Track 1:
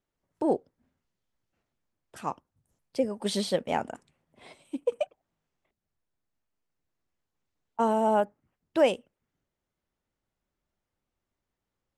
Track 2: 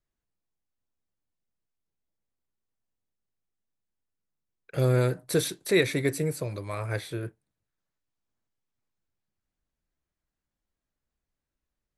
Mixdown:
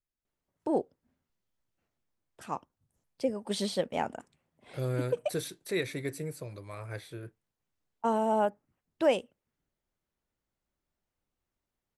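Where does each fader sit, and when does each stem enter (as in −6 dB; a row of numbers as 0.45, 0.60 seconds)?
−3.0, −9.0 decibels; 0.25, 0.00 seconds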